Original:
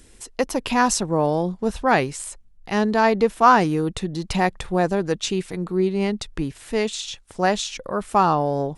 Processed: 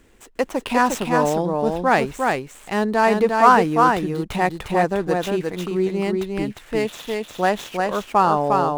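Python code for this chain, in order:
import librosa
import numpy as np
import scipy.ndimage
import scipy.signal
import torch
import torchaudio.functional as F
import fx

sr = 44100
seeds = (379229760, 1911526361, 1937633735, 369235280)

p1 = scipy.ndimage.median_filter(x, 9, mode='constant')
p2 = fx.low_shelf(p1, sr, hz=180.0, db=-7.5)
p3 = p2 + fx.echo_single(p2, sr, ms=354, db=-3.5, dry=0)
y = p3 * 10.0 ** (1.5 / 20.0)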